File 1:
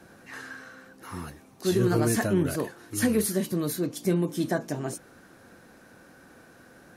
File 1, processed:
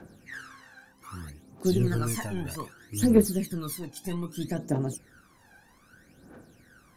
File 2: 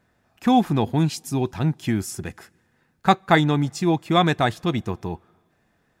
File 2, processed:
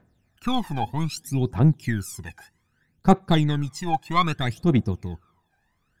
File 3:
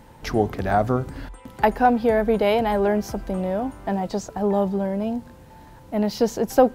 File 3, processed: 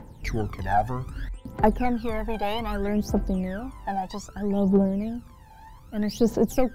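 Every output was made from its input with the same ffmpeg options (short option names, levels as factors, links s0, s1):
-af "aeval=exprs='0.75*(cos(1*acos(clip(val(0)/0.75,-1,1)))-cos(1*PI/2))+0.0596*(cos(4*acos(clip(val(0)/0.75,-1,1)))-cos(4*PI/2))':c=same,aphaser=in_gain=1:out_gain=1:delay=1.3:decay=0.8:speed=0.63:type=triangular,volume=0.422"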